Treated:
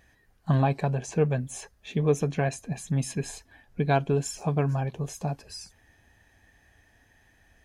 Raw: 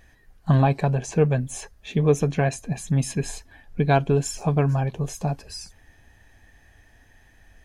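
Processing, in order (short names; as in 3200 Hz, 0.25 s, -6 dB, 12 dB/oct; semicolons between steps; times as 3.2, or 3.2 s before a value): HPF 70 Hz 6 dB/oct; gain -4 dB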